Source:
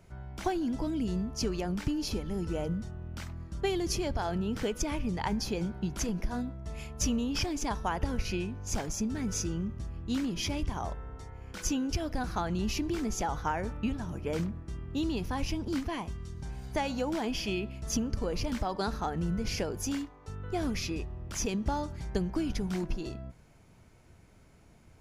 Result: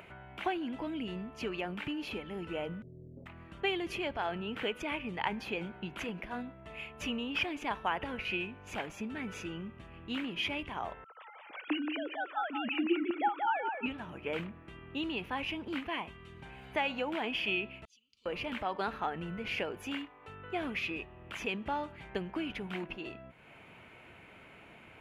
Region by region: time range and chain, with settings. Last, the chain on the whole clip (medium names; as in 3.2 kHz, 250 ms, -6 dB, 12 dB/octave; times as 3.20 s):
2.82–3.26 s: elliptic low-pass 530 Hz, stop band 70 dB + comb 7.4 ms, depth 76%
11.04–13.86 s: formants replaced by sine waves + feedback delay 179 ms, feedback 24%, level -5 dB
17.85–18.26 s: inverse Chebyshev high-pass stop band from 1.8 kHz, stop band 50 dB + tape spacing loss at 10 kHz 27 dB
whole clip: high-pass 490 Hz 6 dB/octave; resonant high shelf 3.9 kHz -12.5 dB, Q 3; upward compressor, threshold -44 dBFS